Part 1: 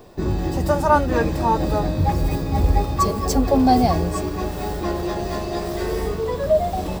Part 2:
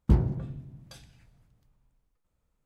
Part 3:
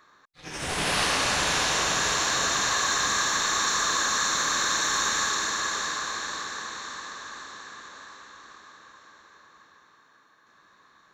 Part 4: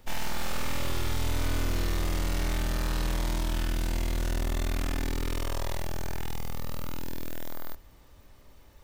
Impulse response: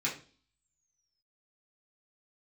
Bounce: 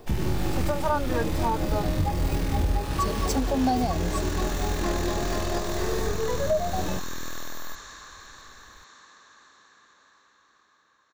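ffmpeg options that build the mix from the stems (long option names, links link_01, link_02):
-filter_complex "[0:a]volume=-4dB[link_01];[1:a]volume=-3dB[link_02];[2:a]adelay=2050,volume=-14.5dB[link_03];[3:a]volume=-1dB[link_04];[link_01][link_02][link_03][link_04]amix=inputs=4:normalize=0,alimiter=limit=-15dB:level=0:latency=1:release=276"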